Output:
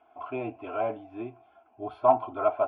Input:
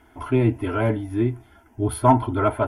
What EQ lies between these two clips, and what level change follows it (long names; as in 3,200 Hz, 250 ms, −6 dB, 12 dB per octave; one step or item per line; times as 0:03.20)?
formant filter a
high-frequency loss of the air 180 metres
high-shelf EQ 5,600 Hz +7.5 dB
+6.0 dB